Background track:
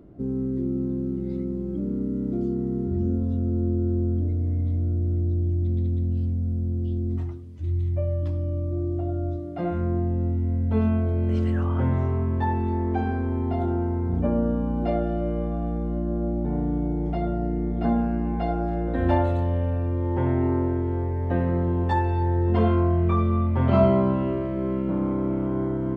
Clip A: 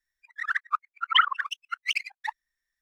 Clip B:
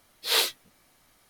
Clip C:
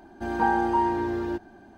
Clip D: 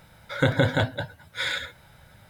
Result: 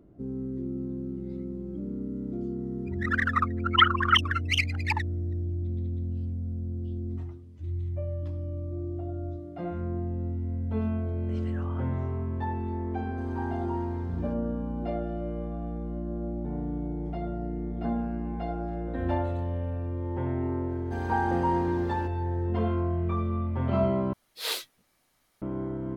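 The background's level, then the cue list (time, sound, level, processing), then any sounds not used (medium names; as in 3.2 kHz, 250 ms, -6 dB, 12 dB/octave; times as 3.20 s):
background track -7 dB
2.63 s: add A -0.5 dB + chunks repeated in reverse 193 ms, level -1 dB
12.96 s: add C -15 dB
20.70 s: add C -4.5 dB
24.13 s: replace with B -8 dB
not used: D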